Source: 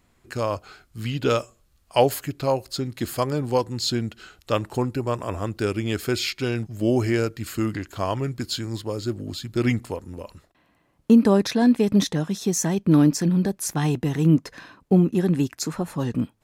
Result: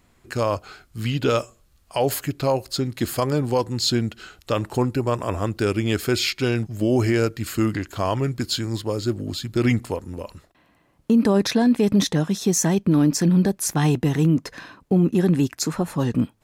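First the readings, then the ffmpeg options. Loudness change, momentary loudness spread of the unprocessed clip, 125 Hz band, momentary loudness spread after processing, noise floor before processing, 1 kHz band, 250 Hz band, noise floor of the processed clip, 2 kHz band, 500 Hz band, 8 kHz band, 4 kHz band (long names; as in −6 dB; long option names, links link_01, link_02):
+1.0 dB, 12 LU, +2.0 dB, 11 LU, −64 dBFS, +1.0 dB, +1.0 dB, −60 dBFS, +2.5 dB, +1.0 dB, +3.5 dB, +3.0 dB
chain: -af "alimiter=limit=-14dB:level=0:latency=1:release=25,volume=3.5dB"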